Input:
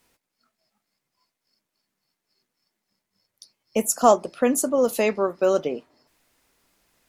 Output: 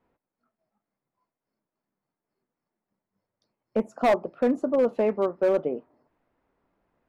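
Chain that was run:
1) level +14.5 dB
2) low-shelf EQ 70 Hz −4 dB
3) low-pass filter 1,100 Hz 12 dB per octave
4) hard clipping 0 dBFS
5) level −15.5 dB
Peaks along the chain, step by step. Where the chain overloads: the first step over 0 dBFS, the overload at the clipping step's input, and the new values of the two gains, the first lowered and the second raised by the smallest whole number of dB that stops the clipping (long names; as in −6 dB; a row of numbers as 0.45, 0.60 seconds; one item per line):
+11.0, +10.5, +9.0, 0.0, −15.5 dBFS
step 1, 9.0 dB
step 1 +5.5 dB, step 5 −6.5 dB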